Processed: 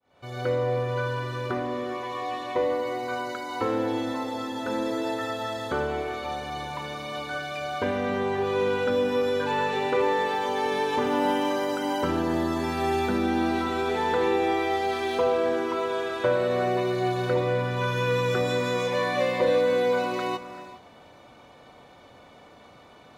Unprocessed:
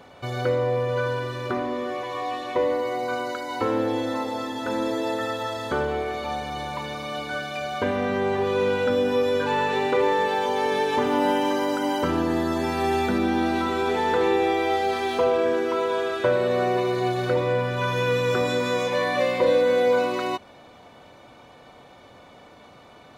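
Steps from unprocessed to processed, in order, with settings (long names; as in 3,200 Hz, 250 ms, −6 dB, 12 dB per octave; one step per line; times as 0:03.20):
fade in at the beginning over 0.52 s
reverb whose tail is shaped and stops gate 430 ms rising, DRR 11.5 dB
level −2.5 dB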